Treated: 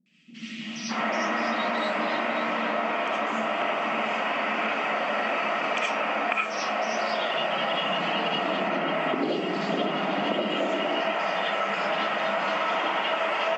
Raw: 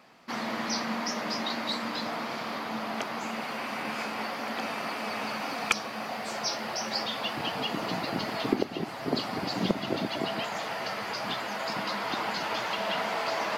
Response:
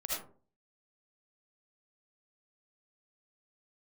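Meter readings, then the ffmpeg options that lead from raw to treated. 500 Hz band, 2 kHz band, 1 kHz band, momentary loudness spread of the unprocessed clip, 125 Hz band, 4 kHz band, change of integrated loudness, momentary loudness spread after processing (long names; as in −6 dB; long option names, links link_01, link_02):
+7.0 dB, +6.5 dB, +6.0 dB, 4 LU, −1.0 dB, +2.5 dB, +5.5 dB, 1 LU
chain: -filter_complex "[0:a]highshelf=frequency=3500:width_type=q:width=3:gain=-7,acrossover=split=210|3000[link_01][link_02][link_03];[link_03]adelay=60[link_04];[link_02]adelay=610[link_05];[link_01][link_05][link_04]amix=inputs=3:normalize=0[link_06];[1:a]atrim=start_sample=2205[link_07];[link_06][link_07]afir=irnorm=-1:irlink=0,acompressor=threshold=-28dB:ratio=6,afftfilt=real='re*between(b*sr/4096,150,8100)':imag='im*between(b*sr/4096,150,8100)':win_size=4096:overlap=0.75,volume=5.5dB"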